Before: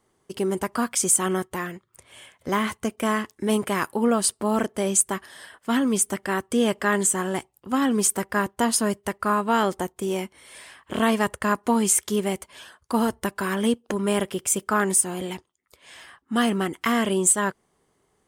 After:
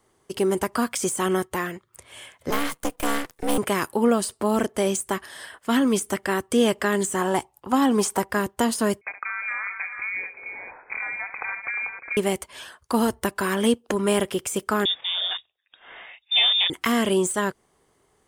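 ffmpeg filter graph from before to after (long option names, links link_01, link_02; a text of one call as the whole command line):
ffmpeg -i in.wav -filter_complex "[0:a]asettb=1/sr,asplit=3[link_01][link_02][link_03];[link_01]atrim=end=2.504[link_04];[link_02]atrim=start=2.5:end=3.58,asetpts=PTS-STARTPTS,afade=type=in:duration=0.004:curve=qsin,afade=type=out:start_time=1.076:duration=0.004:curve=qsin,highshelf=frequency=9700:gain=10.5,afreqshift=69,aeval=exprs='max(val(0),0)':channel_layout=same[link_05];[link_03]atrim=start=3.576[link_06];[link_04][link_05]acrossfade=duration=0.004:curve1=hsin:curve2=qsin[link_07];[link_07][link_06]acrossfade=duration=0.004:curve1=qsin:curve2=hsin,asettb=1/sr,asplit=3[link_08][link_09][link_10];[link_08]atrim=end=7.214[link_11];[link_09]atrim=start=7.21:end=8.3,asetpts=PTS-STARTPTS,afade=type=in:duration=0.004:curve=qsin,afade=type=out:start_time=1.086:duration=0.004:curve=qsin,acrossover=split=7200[link_12][link_13];[link_13]acompressor=threshold=-32dB:ratio=4:attack=1:release=60[link_14];[link_12][link_14]amix=inputs=2:normalize=0,equalizer=frequency=880:width=1.7:gain=10[link_15];[link_10]atrim=start=8.296[link_16];[link_11][link_15]acrossfade=duration=0.004:curve1=hsin:curve2=qsin[link_17];[link_17][link_16]acrossfade=duration=0.004:curve1=qsin:curve2=hsin,asettb=1/sr,asplit=3[link_18][link_19][link_20];[link_18]atrim=end=9.014[link_21];[link_19]atrim=start=9.01:end=12.17,asetpts=PTS-STARTPTS,afade=type=in:duration=0.004:curve=qsin,afade=type=out:start_time=3.156:duration=0.004:curve=qsin,acompressor=threshold=-30dB:ratio=8:attack=3.2:release=140:knee=1:detection=peak,aecho=1:1:69|352|441:0.282|0.224|0.398,atrim=end_sample=139356,lowpass=frequency=2200:width_type=q:width=0.5098,lowpass=frequency=2200:width_type=q:width=0.6013,lowpass=frequency=2200:width_type=q:width=0.9,lowpass=frequency=2200:width_type=q:width=2.563,afreqshift=-2600[link_22];[link_20]atrim=start=12.166[link_23];[link_21][link_22]acrossfade=duration=0.004:curve1=hsin:curve2=qsin[link_24];[link_24][link_23]acrossfade=duration=0.004:curve1=qsin:curve2=hsin,asettb=1/sr,asplit=3[link_25][link_26][link_27];[link_25]atrim=end=14.854[link_28];[link_26]atrim=start=14.85:end=16.7,asetpts=PTS-STARTPTS,afade=type=in:duration=0.004:curve=qsin,afade=type=out:start_time=1.846:duration=0.004:curve=qsin,lowpass=frequency=3200:width_type=q:width=0.5098,lowpass=frequency=3200:width_type=q:width=0.6013,lowpass=frequency=3200:width_type=q:width=0.9,lowpass=frequency=3200:width_type=q:width=2.563,afreqshift=-3800,bandreject=frequency=50:width_type=h:width=6,bandreject=frequency=100:width_type=h:width=6[link_29];[link_27]atrim=start=16.696[link_30];[link_28][link_29]acrossfade=duration=0.004:curve1=hsin:curve2=qsin[link_31];[link_31][link_30]acrossfade=duration=0.004:curve1=qsin:curve2=hsin,deesser=0.45,equalizer=frequency=190:width=1.5:gain=-4,acrossover=split=490|3000[link_32][link_33][link_34];[link_33]acompressor=threshold=-28dB:ratio=6[link_35];[link_32][link_35][link_34]amix=inputs=3:normalize=0,volume=4dB" out.wav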